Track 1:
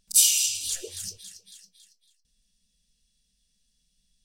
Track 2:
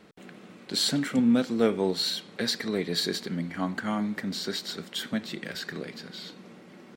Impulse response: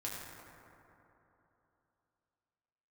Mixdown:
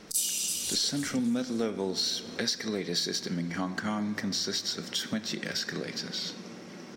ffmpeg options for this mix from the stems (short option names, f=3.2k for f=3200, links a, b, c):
-filter_complex "[0:a]volume=-3dB,asplit=3[a][b][c];[b]volume=-4dB[d];[c]volume=-7dB[e];[1:a]equalizer=f=5.6k:w=2.9:g=13.5,volume=3dB,asplit=2[f][g];[g]volume=-14dB[h];[2:a]atrim=start_sample=2205[i];[d][h]amix=inputs=2:normalize=0[j];[j][i]afir=irnorm=-1:irlink=0[k];[e]aecho=0:1:325:1[l];[a][f][k][l]amix=inputs=4:normalize=0,acompressor=threshold=-30dB:ratio=3"